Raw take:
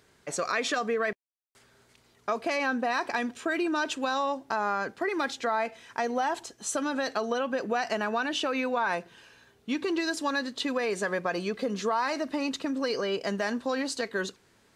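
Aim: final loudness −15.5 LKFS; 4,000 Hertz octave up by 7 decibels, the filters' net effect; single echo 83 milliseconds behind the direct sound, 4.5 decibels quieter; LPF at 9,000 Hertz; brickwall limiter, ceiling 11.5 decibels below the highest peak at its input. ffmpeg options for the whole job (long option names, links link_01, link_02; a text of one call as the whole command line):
ffmpeg -i in.wav -af "lowpass=9000,equalizer=frequency=4000:width_type=o:gain=8.5,alimiter=limit=-23dB:level=0:latency=1,aecho=1:1:83:0.596,volume=15.5dB" out.wav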